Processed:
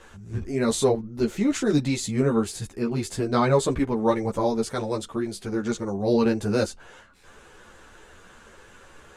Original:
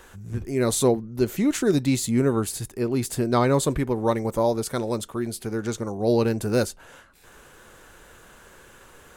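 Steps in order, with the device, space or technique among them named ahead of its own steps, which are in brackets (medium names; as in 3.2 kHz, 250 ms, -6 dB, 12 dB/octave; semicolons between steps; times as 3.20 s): string-machine ensemble chorus (three-phase chorus; low-pass 7.5 kHz 12 dB/octave); trim +3 dB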